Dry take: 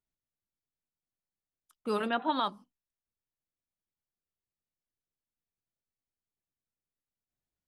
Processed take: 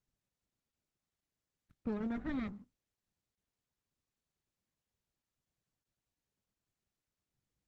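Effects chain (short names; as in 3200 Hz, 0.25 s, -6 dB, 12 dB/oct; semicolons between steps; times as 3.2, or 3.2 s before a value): minimum comb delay 0.52 ms; HPF 61 Hz 6 dB/oct; tone controls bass +14 dB, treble -6 dB; notch 1600 Hz, Q 21; modulation noise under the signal 31 dB; high shelf 2700 Hz -12 dB; compressor 6:1, threshold -31 dBFS, peak gain reduction 8 dB; gain -3 dB; Opus 16 kbps 48000 Hz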